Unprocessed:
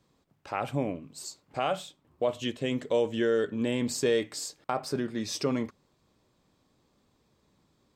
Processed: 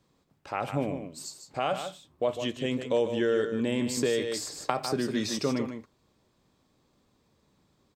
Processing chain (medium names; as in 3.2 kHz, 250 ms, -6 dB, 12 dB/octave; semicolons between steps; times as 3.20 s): delay 151 ms -8.5 dB; 3.97–5.39 s: three bands compressed up and down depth 100%